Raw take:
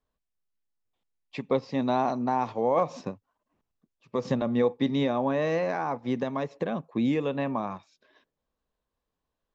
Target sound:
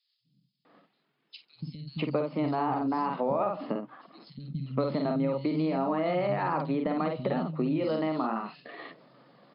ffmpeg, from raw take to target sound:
ffmpeg -i in.wav -filter_complex "[0:a]lowshelf=frequency=180:gain=10,asplit=2[link_01][link_02];[link_02]adelay=50,volume=-5dB[link_03];[link_01][link_03]amix=inputs=2:normalize=0,asplit=2[link_04][link_05];[link_05]alimiter=limit=-21dB:level=0:latency=1:release=23,volume=-0.5dB[link_06];[link_04][link_06]amix=inputs=2:normalize=0,asetrate=49501,aresample=44100,atempo=0.890899,areverse,acompressor=mode=upward:threshold=-30dB:ratio=2.5,areverse,afftfilt=real='re*between(b*sr/4096,120,5200)':imag='im*between(b*sr/4096,120,5200)':win_size=4096:overlap=0.75,acompressor=threshold=-24dB:ratio=8,acrossover=split=180|3800[link_07][link_08][link_09];[link_07]adelay=250[link_10];[link_08]adelay=650[link_11];[link_10][link_11][link_09]amix=inputs=3:normalize=0" -ar 48000 -c:a aac -b:a 192k out.aac

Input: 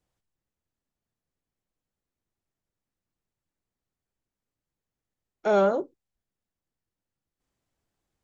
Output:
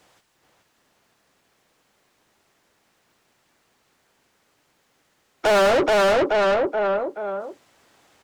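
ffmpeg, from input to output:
ffmpeg -i in.wav -filter_complex "[0:a]asplit=2[link_01][link_02];[link_02]adelay=427,lowpass=frequency=3900:poles=1,volume=-4dB,asplit=2[link_03][link_04];[link_04]adelay=427,lowpass=frequency=3900:poles=1,volume=0.35,asplit=2[link_05][link_06];[link_06]adelay=427,lowpass=frequency=3900:poles=1,volume=0.35,asplit=2[link_07][link_08];[link_08]adelay=427,lowpass=frequency=3900:poles=1,volume=0.35[link_09];[link_01][link_03][link_05][link_07][link_09]amix=inputs=5:normalize=0,asplit=2[link_10][link_11];[link_11]highpass=frequency=720:poles=1,volume=35dB,asoftclip=type=tanh:threshold=-11.5dB[link_12];[link_10][link_12]amix=inputs=2:normalize=0,lowpass=frequency=4400:poles=1,volume=-6dB" out.wav

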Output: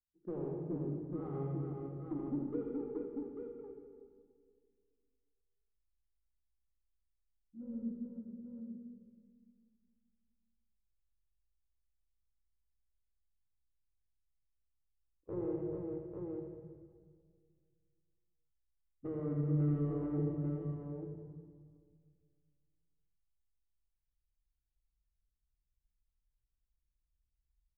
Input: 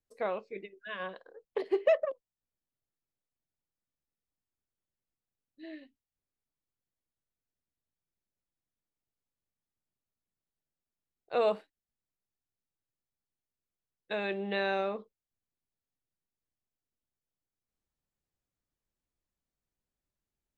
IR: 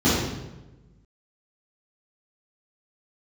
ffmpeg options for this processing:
-filter_complex "[0:a]aemphasis=mode=reproduction:type=75fm,afwtdn=0.00562,asubboost=boost=6:cutoff=73,acompressor=threshold=-37dB:ratio=8,volume=35.5dB,asoftclip=hard,volume=-35.5dB,adynamicsmooth=sensitivity=0.5:basefreq=520,aecho=1:1:60|112|315|625:0.562|0.473|0.596|0.596,asplit=2[link_01][link_02];[1:a]atrim=start_sample=2205,asetrate=28224,aresample=44100,highshelf=frequency=3700:gain=11[link_03];[link_02][link_03]afir=irnorm=-1:irlink=0,volume=-26dB[link_04];[link_01][link_04]amix=inputs=2:normalize=0,asetrate=32667,aresample=44100,volume=4.5dB"

